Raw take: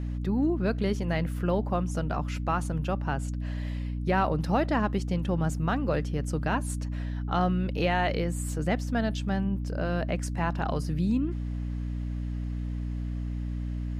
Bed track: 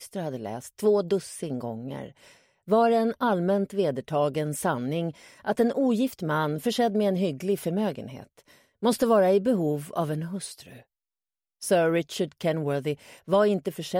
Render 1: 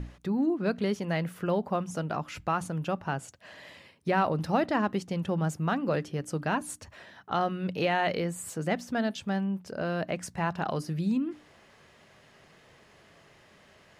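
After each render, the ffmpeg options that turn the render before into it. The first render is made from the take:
-af "bandreject=f=60:t=h:w=6,bandreject=f=120:t=h:w=6,bandreject=f=180:t=h:w=6,bandreject=f=240:t=h:w=6,bandreject=f=300:t=h:w=6"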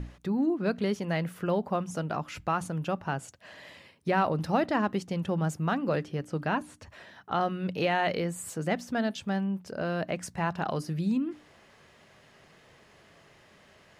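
-filter_complex "[0:a]asettb=1/sr,asplit=3[a][b][c];[a]atrim=end=6.004[d];[b]atrim=start=6:end=7.4,asetpts=PTS-STARTPTS,afade=t=in:d=0.004:c=qsin,afade=t=out:st=1.396:d=0.004:c=qsin,acrossover=split=4100[e][f];[f]acompressor=threshold=-56dB:ratio=4:attack=1:release=60[g];[e][g]amix=inputs=2:normalize=0[h];[c]atrim=start=7.396[i];[d][h]acrossfade=d=0.004:c1=hsin:c2=qsin[j];[j][i]acrossfade=d=0.004:c1=qsin:c2=hsin"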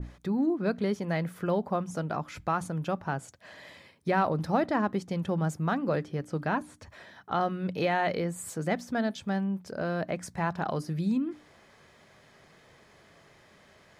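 -af "bandreject=f=2.8k:w=9.6,adynamicequalizer=threshold=0.00794:dfrequency=1800:dqfactor=0.7:tfrequency=1800:tqfactor=0.7:attack=5:release=100:ratio=0.375:range=2:mode=cutabove:tftype=highshelf"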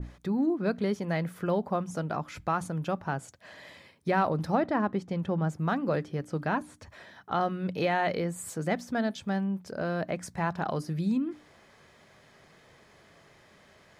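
-filter_complex "[0:a]asettb=1/sr,asplit=3[a][b][c];[a]atrim=end=4.554[d];[b]atrim=start=4.55:end=5.59,asetpts=PTS-STARTPTS,afade=t=in:d=0.004:c=qsin,afade=t=out:st=1.036:d=0.004:c=qsin,highshelf=f=4.8k:g=-11[e];[c]atrim=start=5.586[f];[d][e]acrossfade=d=0.004:c1=hsin:c2=qsin[g];[g][f]acrossfade=d=0.004:c1=qsin:c2=hsin"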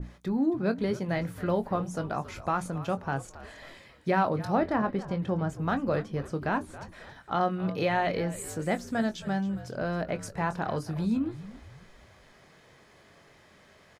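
-filter_complex "[0:a]asplit=2[a][b];[b]adelay=22,volume=-10.5dB[c];[a][c]amix=inputs=2:normalize=0,asplit=5[d][e][f][g][h];[e]adelay=273,afreqshift=-69,volume=-15.5dB[i];[f]adelay=546,afreqshift=-138,volume=-22.6dB[j];[g]adelay=819,afreqshift=-207,volume=-29.8dB[k];[h]adelay=1092,afreqshift=-276,volume=-36.9dB[l];[d][i][j][k][l]amix=inputs=5:normalize=0"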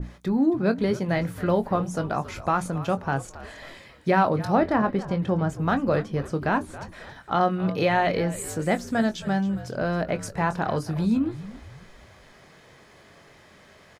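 -af "volume=5dB"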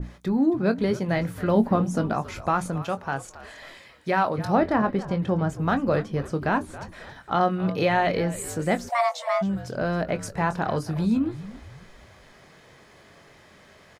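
-filter_complex "[0:a]asettb=1/sr,asplit=3[a][b][c];[a]atrim=end=1.554[d];[b]atrim=start=1.55:end=2.13,asetpts=PTS-STARTPTS,afade=t=in:d=0.004:c=qsin,afade=t=out:st=0.576:d=0.004:c=qsin,equalizer=f=240:w=2.3:g=11.5[e];[c]atrim=start=2.126[f];[d][e]acrossfade=d=0.004:c1=hsin:c2=qsin[g];[g][f]acrossfade=d=0.004:c1=qsin:c2=hsin,asettb=1/sr,asplit=3[h][i][j];[h]atrim=end=2.824[k];[i]atrim=start=2.82:end=4.38,asetpts=PTS-STARTPTS,afade=t=in:d=0.004:c=qsin,afade=t=out:st=1.556:d=0.004:c=qsin,lowshelf=f=460:g=-7.5[l];[j]atrim=start=4.376[m];[k][l]acrossfade=d=0.004:c1=hsin:c2=qsin[n];[n][m]acrossfade=d=0.004:c1=qsin:c2=hsin,asplit=3[o][p][q];[o]afade=t=out:st=8.88:d=0.02[r];[p]afreqshift=470,afade=t=in:st=8.88:d=0.02,afade=t=out:st=9.41:d=0.02[s];[q]afade=t=in:st=9.41:d=0.02[t];[r][s][t]amix=inputs=3:normalize=0"

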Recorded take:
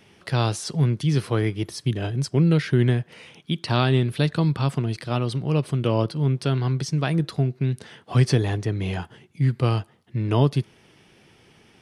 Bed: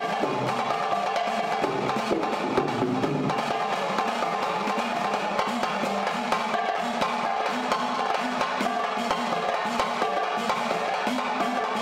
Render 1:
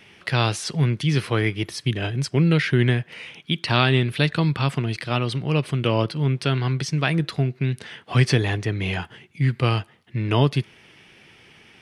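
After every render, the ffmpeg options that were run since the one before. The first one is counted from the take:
-af "equalizer=f=2.3k:t=o:w=1.5:g=9"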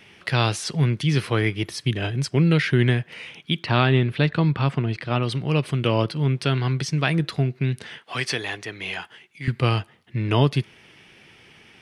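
-filter_complex "[0:a]asettb=1/sr,asplit=3[a][b][c];[a]atrim=end=3.634[d];[b]atrim=start=3.63:end=5.23,asetpts=PTS-STARTPTS,afade=t=in:d=0.004:c=qsin,afade=t=out:st=1.596:d=0.004:c=qsin,aemphasis=mode=reproduction:type=75fm[e];[c]atrim=start=5.226[f];[d][e]acrossfade=d=0.004:c1=hsin:c2=qsin[g];[g][f]acrossfade=d=0.004:c1=qsin:c2=hsin,asettb=1/sr,asplit=3[h][i][j];[h]atrim=end=7.984[k];[i]atrim=start=7.98:end=9.48,asetpts=PTS-STARTPTS,afade=t=in:d=0.004:c=qsin,afade=t=out:st=1.496:d=0.004:c=qsin,highpass=f=870:p=1[l];[j]atrim=start=9.476[m];[k][l]acrossfade=d=0.004:c1=hsin:c2=qsin[n];[n][m]acrossfade=d=0.004:c1=qsin:c2=hsin"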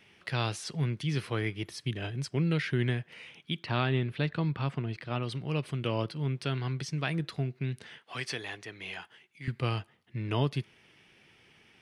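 -af "volume=-10dB"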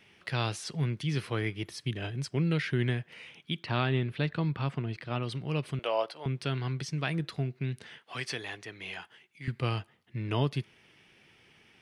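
-filter_complex "[0:a]asettb=1/sr,asplit=3[a][b][c];[a]atrim=end=5.794[d];[b]atrim=start=5.79:end=6.26,asetpts=PTS-STARTPTS,afade=t=in:d=0.004:c=qsin,afade=t=out:st=0.466:d=0.004:c=qsin,highpass=f=660:t=q:w=2.9[e];[c]atrim=start=6.256[f];[d][e]acrossfade=d=0.004:c1=hsin:c2=qsin[g];[g][f]acrossfade=d=0.004:c1=qsin:c2=hsin"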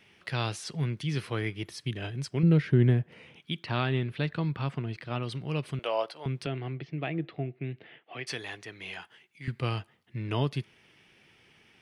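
-filter_complex "[0:a]asettb=1/sr,asplit=3[a][b][c];[a]atrim=end=2.434[d];[b]atrim=start=2.43:end=3.36,asetpts=PTS-STARTPTS,afade=t=in:d=0.004:c=qsin,afade=t=out:st=0.926:d=0.004:c=qsin,tiltshelf=f=970:g=8[e];[c]atrim=start=3.356[f];[d][e]acrossfade=d=0.004:c1=hsin:c2=qsin[g];[g][f]acrossfade=d=0.004:c1=qsin:c2=hsin,asettb=1/sr,asplit=3[h][i][j];[h]atrim=end=6.464[k];[i]atrim=start=6.46:end=8.27,asetpts=PTS-STARTPTS,afade=t=in:d=0.004:c=qsin,afade=t=out:st=1.806:d=0.004:c=qsin,highpass=130,equalizer=f=210:t=q:w=4:g=-7,equalizer=f=320:t=q:w=4:g=6,equalizer=f=690:t=q:w=4:g=5,equalizer=f=1k:t=q:w=4:g=-8,equalizer=f=1.5k:t=q:w=4:g=-8,lowpass=f=2.8k:w=0.5412,lowpass=f=2.8k:w=1.3066[l];[j]atrim=start=8.266[m];[k][l]acrossfade=d=0.004:c1=hsin:c2=qsin[n];[n][m]acrossfade=d=0.004:c1=qsin:c2=hsin"

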